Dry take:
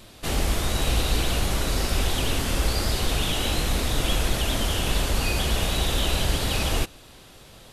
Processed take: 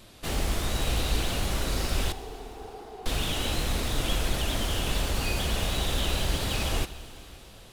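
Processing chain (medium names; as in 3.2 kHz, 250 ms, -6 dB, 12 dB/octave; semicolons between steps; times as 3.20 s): tracing distortion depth 0.024 ms; 2.12–3.06 s: two resonant band-passes 570 Hz, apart 0.81 oct; plate-style reverb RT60 3.9 s, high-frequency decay 1×, DRR 13.5 dB; trim -4 dB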